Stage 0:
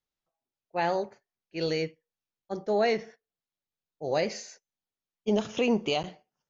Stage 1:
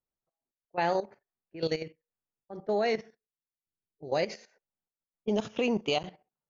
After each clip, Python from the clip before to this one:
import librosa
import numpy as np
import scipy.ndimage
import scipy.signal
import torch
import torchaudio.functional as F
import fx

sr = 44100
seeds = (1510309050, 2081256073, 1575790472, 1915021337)

y = fx.env_lowpass(x, sr, base_hz=1100.0, full_db=-21.5)
y = fx.spec_box(y, sr, start_s=3.08, length_s=1.01, low_hz=450.0, high_hz=3500.0, gain_db=-11)
y = fx.level_steps(y, sr, step_db=14)
y = y * 10.0 ** (1.5 / 20.0)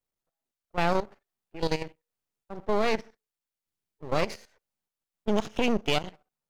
y = np.maximum(x, 0.0)
y = y * 10.0 ** (5.5 / 20.0)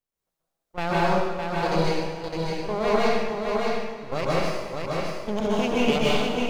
y = fx.echo_feedback(x, sr, ms=611, feedback_pct=15, wet_db=-4.0)
y = fx.rev_plate(y, sr, seeds[0], rt60_s=1.4, hf_ratio=0.85, predelay_ms=115, drr_db=-7.0)
y = y * 10.0 ** (-3.0 / 20.0)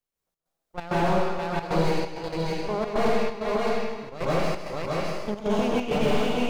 y = fx.step_gate(x, sr, bpm=132, pattern='xxx.xxx.xxx', floor_db=-12.0, edge_ms=4.5)
y = y + 10.0 ** (-13.0 / 20.0) * np.pad(y, (int(159 * sr / 1000.0), 0))[:len(y)]
y = fx.slew_limit(y, sr, full_power_hz=69.0)